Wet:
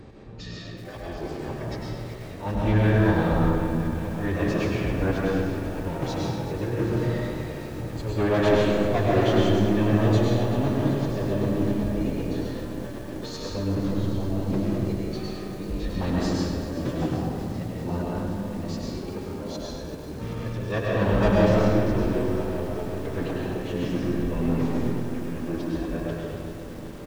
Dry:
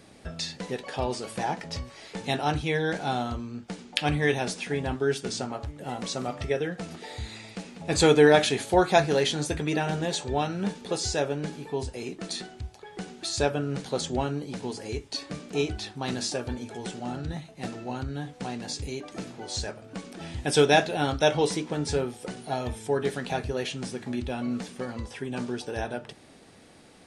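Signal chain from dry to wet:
low-pass filter 1,100 Hz 6 dB per octave
low-shelf EQ 140 Hz +11 dB
in parallel at +2.5 dB: downward compressor 10 to 1, threshold −31 dBFS, peak gain reduction 19 dB
on the sum: volume swells 440 ms
soft clipping −19 dBFS, distortion −13 dB
phase-vocoder pitch shift with formants kept −6.5 semitones
on a send: repeating echo 102 ms, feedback 29%, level −7 dB
on the sum: comb and all-pass reverb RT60 1.6 s, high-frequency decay 0.5×, pre-delay 85 ms, DRR −3 dB
feedback echo at a low word length 384 ms, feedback 80%, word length 7 bits, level −11.5 dB

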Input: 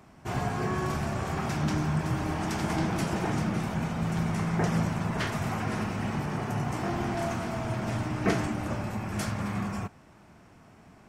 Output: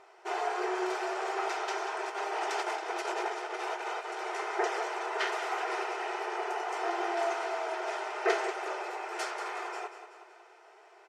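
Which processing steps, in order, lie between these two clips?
0:02.04–0:04.19: compressor whose output falls as the input rises −31 dBFS, ratio −1
linear-phase brick-wall high-pass 350 Hz
high-frequency loss of the air 64 metres
notch comb filter 560 Hz
repeating echo 187 ms, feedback 52%, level −11 dB
level +3 dB

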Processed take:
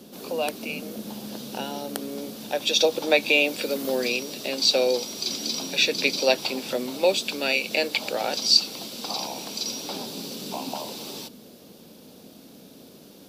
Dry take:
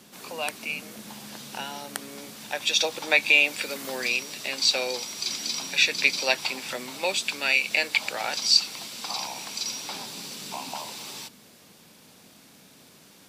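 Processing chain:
octave-band graphic EQ 125/250/500/1,000/2,000/8,000 Hz −4/+4/+5/−6/−11/−9 dB
level +6 dB

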